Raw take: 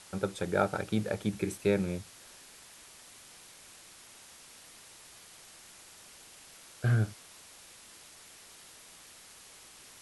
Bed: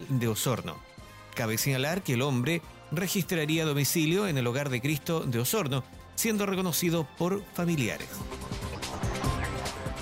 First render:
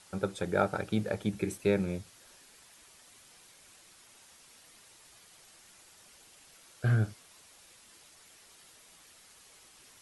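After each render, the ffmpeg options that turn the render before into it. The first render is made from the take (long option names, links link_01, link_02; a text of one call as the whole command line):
ffmpeg -i in.wav -af "afftdn=noise_reduction=6:noise_floor=-54" out.wav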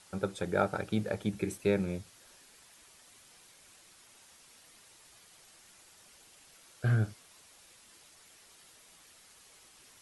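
ffmpeg -i in.wav -af "volume=-1dB" out.wav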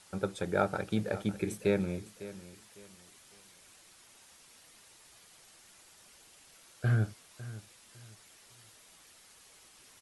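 ffmpeg -i in.wav -af "aecho=1:1:553|1106|1659:0.158|0.0444|0.0124" out.wav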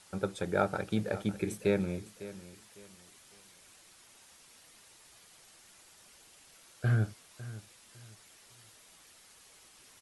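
ffmpeg -i in.wav -af anull out.wav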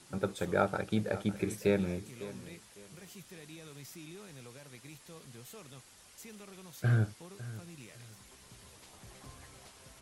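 ffmpeg -i in.wav -i bed.wav -filter_complex "[1:a]volume=-23dB[link_01];[0:a][link_01]amix=inputs=2:normalize=0" out.wav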